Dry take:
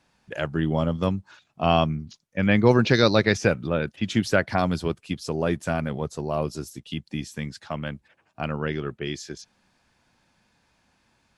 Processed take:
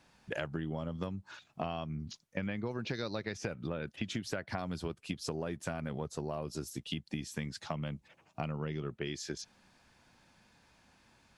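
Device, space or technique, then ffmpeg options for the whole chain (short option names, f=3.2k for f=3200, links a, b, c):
serial compression, leveller first: -filter_complex "[0:a]asettb=1/sr,asplit=3[a][b][c];[a]atrim=end=7.604[d];[b]atrim=start=7.6:end=8.94,asetpts=PTS-STARTPTS,afade=t=in:d=0.004:c=qsin,afade=t=out:st=1.336:d=0.004:c=qsin,equalizer=f=160:t=o:w=0.33:g=6,equalizer=f=1.6k:t=o:w=0.33:g=-8,equalizer=f=6.3k:t=o:w=0.33:g=4[e];[c]atrim=start=8.936[f];[d][e]acrossfade=d=0.004:c1=hsin:c2=qsin[g];[g][f]acrossfade=d=0.004:c1=qsin:c2=hsin,acompressor=threshold=-24dB:ratio=2.5,acompressor=threshold=-35dB:ratio=6,volume=1dB"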